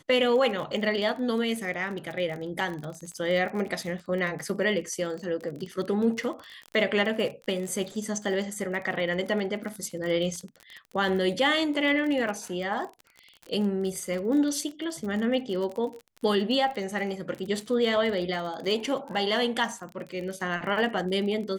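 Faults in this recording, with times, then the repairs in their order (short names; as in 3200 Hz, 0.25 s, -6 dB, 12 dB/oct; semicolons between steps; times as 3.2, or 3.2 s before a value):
crackle 32/s -33 dBFS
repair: de-click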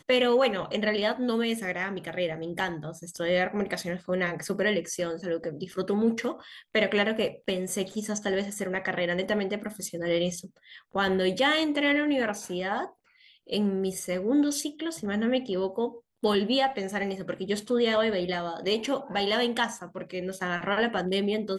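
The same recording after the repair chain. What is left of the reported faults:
none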